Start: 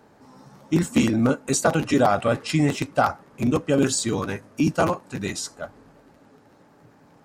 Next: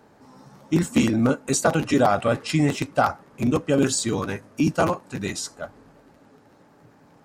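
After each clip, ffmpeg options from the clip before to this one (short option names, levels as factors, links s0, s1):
-af anull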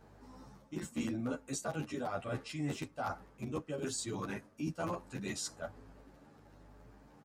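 -filter_complex "[0:a]aeval=exprs='val(0)+0.00224*(sin(2*PI*50*n/s)+sin(2*PI*2*50*n/s)/2+sin(2*PI*3*50*n/s)/3+sin(2*PI*4*50*n/s)/4+sin(2*PI*5*50*n/s)/5)':c=same,areverse,acompressor=threshold=0.0355:ratio=5,areverse,asplit=2[s0][s1];[s1]adelay=10.5,afreqshift=1.1[s2];[s0][s2]amix=inputs=2:normalize=1,volume=0.631"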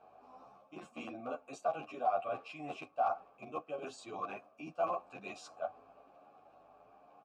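-filter_complex "[0:a]asplit=3[s0][s1][s2];[s0]bandpass=f=730:t=q:w=8,volume=1[s3];[s1]bandpass=f=1090:t=q:w=8,volume=0.501[s4];[s2]bandpass=f=2440:t=q:w=8,volume=0.355[s5];[s3][s4][s5]amix=inputs=3:normalize=0,volume=3.98"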